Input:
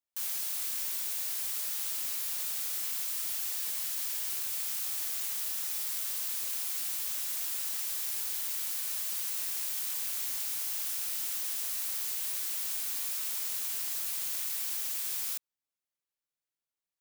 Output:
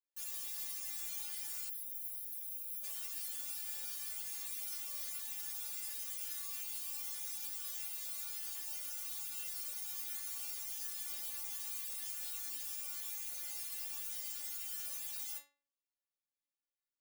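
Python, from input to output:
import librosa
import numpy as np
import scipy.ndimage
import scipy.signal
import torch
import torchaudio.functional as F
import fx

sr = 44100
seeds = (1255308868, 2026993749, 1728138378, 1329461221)

y = fx.stiff_resonator(x, sr, f0_hz=280.0, decay_s=0.4, stiffness=0.002)
y = fx.spec_box(y, sr, start_s=1.69, length_s=1.15, low_hz=560.0, high_hz=9900.0, gain_db=-15)
y = F.gain(torch.from_numpy(y), 6.5).numpy()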